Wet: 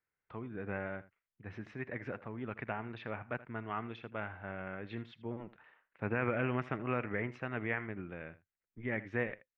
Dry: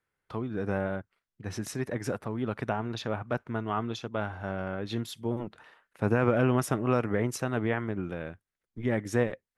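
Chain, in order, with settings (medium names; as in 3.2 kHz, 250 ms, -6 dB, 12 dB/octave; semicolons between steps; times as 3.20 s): dynamic bell 2.2 kHz, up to +7 dB, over -48 dBFS, Q 1.4; four-pole ladder low-pass 2.9 kHz, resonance 35%; on a send: delay 80 ms -17.5 dB; on the sum: trim -2.5 dB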